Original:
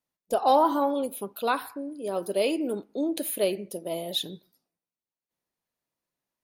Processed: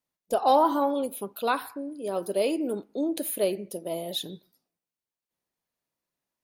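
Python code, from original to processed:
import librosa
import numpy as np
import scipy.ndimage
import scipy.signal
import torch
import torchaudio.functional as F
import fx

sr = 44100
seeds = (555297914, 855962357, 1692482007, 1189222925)

y = fx.dynamic_eq(x, sr, hz=2900.0, q=0.96, threshold_db=-44.0, ratio=4.0, max_db=-4, at=(2.24, 4.29))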